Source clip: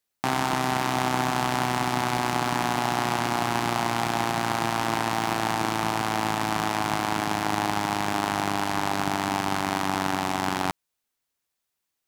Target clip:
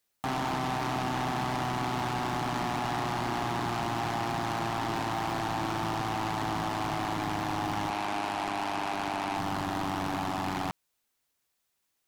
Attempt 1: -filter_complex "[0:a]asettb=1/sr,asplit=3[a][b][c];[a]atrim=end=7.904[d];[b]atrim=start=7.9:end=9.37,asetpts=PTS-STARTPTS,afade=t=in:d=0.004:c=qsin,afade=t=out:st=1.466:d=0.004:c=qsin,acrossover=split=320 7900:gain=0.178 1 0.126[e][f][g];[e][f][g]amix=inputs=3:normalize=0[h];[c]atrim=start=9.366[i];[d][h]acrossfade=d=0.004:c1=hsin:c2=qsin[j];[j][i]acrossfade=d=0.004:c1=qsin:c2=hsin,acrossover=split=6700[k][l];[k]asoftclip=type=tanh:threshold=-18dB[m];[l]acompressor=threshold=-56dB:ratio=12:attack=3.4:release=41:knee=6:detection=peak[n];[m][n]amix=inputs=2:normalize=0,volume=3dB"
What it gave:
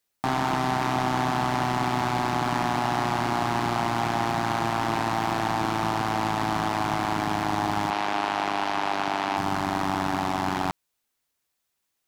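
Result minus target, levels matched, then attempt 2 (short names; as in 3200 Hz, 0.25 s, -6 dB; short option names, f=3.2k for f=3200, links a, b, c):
soft clip: distortion -8 dB
-filter_complex "[0:a]asettb=1/sr,asplit=3[a][b][c];[a]atrim=end=7.904[d];[b]atrim=start=7.9:end=9.37,asetpts=PTS-STARTPTS,afade=t=in:d=0.004:c=qsin,afade=t=out:st=1.466:d=0.004:c=qsin,acrossover=split=320 7900:gain=0.178 1 0.126[e][f][g];[e][f][g]amix=inputs=3:normalize=0[h];[c]atrim=start=9.366[i];[d][h]acrossfade=d=0.004:c1=hsin:c2=qsin[j];[j][i]acrossfade=d=0.004:c1=qsin:c2=hsin,acrossover=split=6700[k][l];[k]asoftclip=type=tanh:threshold=-29.5dB[m];[l]acompressor=threshold=-56dB:ratio=12:attack=3.4:release=41:knee=6:detection=peak[n];[m][n]amix=inputs=2:normalize=0,volume=3dB"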